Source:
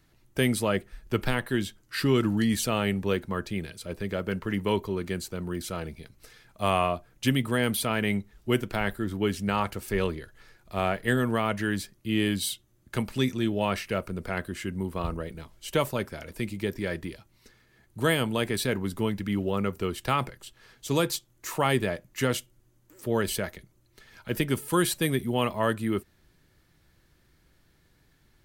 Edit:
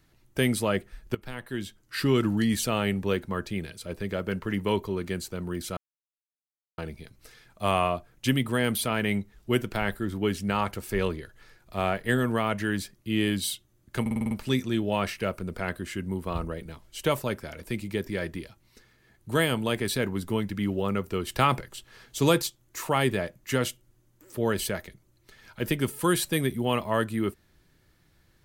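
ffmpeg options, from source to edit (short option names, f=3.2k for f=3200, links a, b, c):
-filter_complex "[0:a]asplit=11[a][b][c][d][e][f][g][h][i][j][k];[a]atrim=end=1.15,asetpts=PTS-STARTPTS,afade=t=out:st=1.146:d=0.004:c=hsin:silence=0.105925[l];[b]atrim=start=1.15:end=5.77,asetpts=PTS-STARTPTS,afade=t=in:d=0.91:silence=0.105925,afade=t=out:st=4.616:d=0.004:c=hsin,apad=pad_dur=1.01[m];[c]atrim=start=5.77:end=13.052,asetpts=PTS-STARTPTS,afade=t=in:d=0.004:c=hsin[n];[d]atrim=start=12.998:end=13.052[o];[e]atrim=start=12.998:end=13.052[p];[f]atrim=start=12.998:end=13.052[q];[g]atrim=start=12.998:end=13.052[r];[h]atrim=start=12.998:end=13.052[s];[i]atrim=start=12.998:end=19.962[t];[j]atrim=start=19.958:end=21.112,asetpts=PTS-STARTPTS,volume=3.5dB[u];[k]atrim=start=21.108[v];[l][m][n]concat=n=3:v=0:a=1[w];[w][o]acrossfade=d=0.004:c1=hsin:c2=hsin[x];[x][p]acrossfade=d=0.004:c1=hsin:c2=hsin[y];[y][q]acrossfade=d=0.004:c1=hsin:c2=hsin[z];[z][r]acrossfade=d=0.004:c1=hsin:c2=hsin[aa];[aa][s]acrossfade=d=0.004:c1=hsin:c2=hsin[ab];[ab][t]acrossfade=d=0.004:c1=hsin:c2=hsin[ac];[ac][u]acrossfade=d=0.004:c1=hsin:c2=hsin[ad];[ad][v]acrossfade=d=0.004:c1=hsin:c2=hsin"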